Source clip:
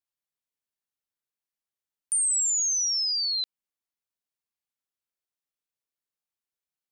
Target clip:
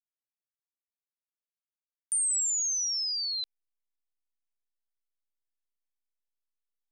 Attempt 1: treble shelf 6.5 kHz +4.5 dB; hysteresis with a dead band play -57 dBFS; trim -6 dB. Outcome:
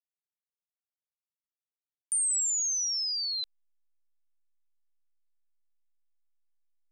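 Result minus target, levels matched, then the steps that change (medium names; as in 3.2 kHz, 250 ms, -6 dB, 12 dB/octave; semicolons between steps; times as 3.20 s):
hysteresis with a dead band: distortion +12 dB
change: hysteresis with a dead band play -66 dBFS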